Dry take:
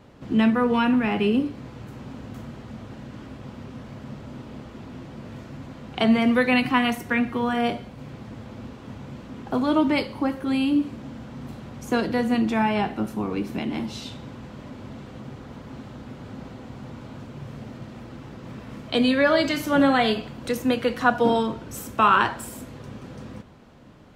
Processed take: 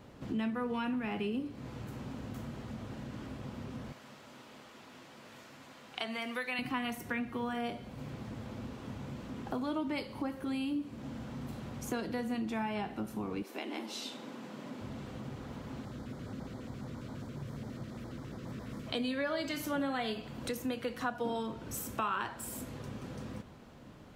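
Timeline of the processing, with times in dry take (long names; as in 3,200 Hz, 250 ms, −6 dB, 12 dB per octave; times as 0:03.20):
0:03.92–0:06.59: high-pass filter 1,200 Hz 6 dB per octave
0:13.42–0:14.80: high-pass filter 380 Hz → 150 Hz 24 dB per octave
0:15.85–0:18.87: auto-filter notch square 7.3 Hz 850–2,700 Hz
whole clip: high-shelf EQ 8,000 Hz +6.5 dB; downward compressor 2.5 to 1, threshold −34 dBFS; level −3.5 dB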